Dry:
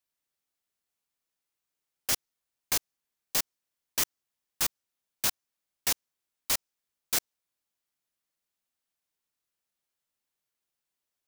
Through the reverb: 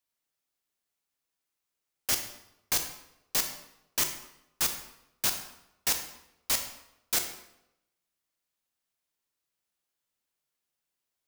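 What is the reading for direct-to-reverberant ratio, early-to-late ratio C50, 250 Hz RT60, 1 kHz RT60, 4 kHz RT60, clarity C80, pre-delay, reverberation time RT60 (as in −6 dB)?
6.0 dB, 8.0 dB, 0.85 s, 0.80 s, 0.65 s, 10.5 dB, 23 ms, 0.85 s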